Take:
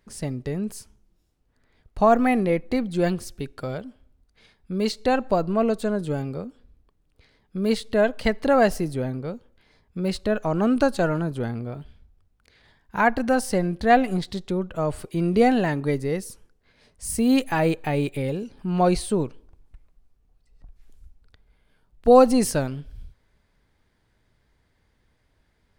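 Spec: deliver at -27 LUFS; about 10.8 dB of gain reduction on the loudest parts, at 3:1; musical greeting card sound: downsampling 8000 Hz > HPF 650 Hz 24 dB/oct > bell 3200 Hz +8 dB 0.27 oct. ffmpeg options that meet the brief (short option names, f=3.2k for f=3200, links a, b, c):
-af "acompressor=threshold=-24dB:ratio=3,aresample=8000,aresample=44100,highpass=f=650:w=0.5412,highpass=f=650:w=1.3066,equalizer=f=3.2k:t=o:w=0.27:g=8,volume=8.5dB"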